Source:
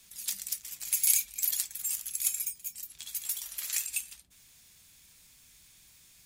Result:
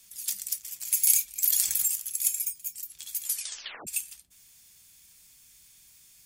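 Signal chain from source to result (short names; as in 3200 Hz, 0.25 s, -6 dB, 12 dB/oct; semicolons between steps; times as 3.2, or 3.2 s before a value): high shelf 4100 Hz +7.5 dB; 3.24 tape stop 0.63 s; notch 3900 Hz, Q 20; 1.43–1.88 fast leveller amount 70%; gain -3.5 dB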